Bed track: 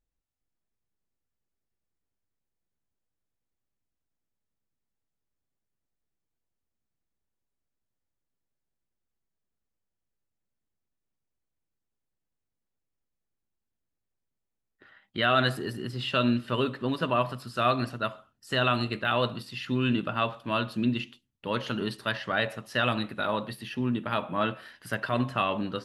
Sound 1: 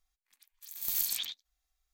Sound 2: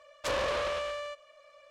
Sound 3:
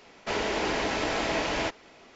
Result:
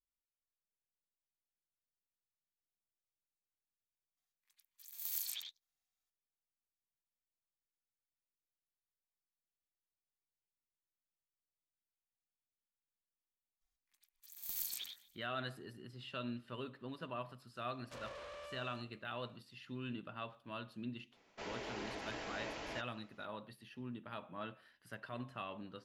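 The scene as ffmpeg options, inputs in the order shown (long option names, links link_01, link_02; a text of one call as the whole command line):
ffmpeg -i bed.wav -i cue0.wav -i cue1.wav -i cue2.wav -filter_complex "[1:a]asplit=2[link_01][link_02];[0:a]volume=-18dB[link_03];[link_01]highpass=frequency=550:poles=1[link_04];[link_02]aecho=1:1:122|244|366|488:0.0891|0.0481|0.026|0.014[link_05];[2:a]alimiter=level_in=0.5dB:limit=-24dB:level=0:latency=1:release=71,volume=-0.5dB[link_06];[link_04]atrim=end=1.93,asetpts=PTS-STARTPTS,volume=-9dB,afade=type=in:duration=0.004:curve=hsin,afade=type=out:start_time=1.926:duration=0.004:curve=hsin,adelay=183897S[link_07];[link_05]atrim=end=1.93,asetpts=PTS-STARTPTS,volume=-10dB,afade=type=in:duration=0.004:curve=hsin,afade=type=out:start_time=1.926:duration=0.004:curve=hsin,adelay=13610[link_08];[link_06]atrim=end=1.7,asetpts=PTS-STARTPTS,volume=-16.5dB,afade=type=in:duration=0.004:curve=hsin,afade=type=out:start_time=1.696:duration=0.004:curve=hsin,adelay=17670[link_09];[3:a]atrim=end=2.15,asetpts=PTS-STARTPTS,volume=-17dB,afade=type=in:duration=0.02,afade=type=out:start_time=2.13:duration=0.02,adelay=21110[link_10];[link_03][link_07][link_08][link_09][link_10]amix=inputs=5:normalize=0" out.wav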